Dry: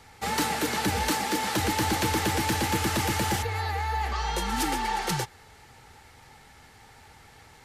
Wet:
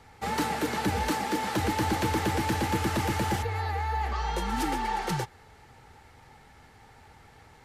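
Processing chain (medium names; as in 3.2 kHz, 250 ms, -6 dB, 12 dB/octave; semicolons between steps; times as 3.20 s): treble shelf 2.3 kHz -8 dB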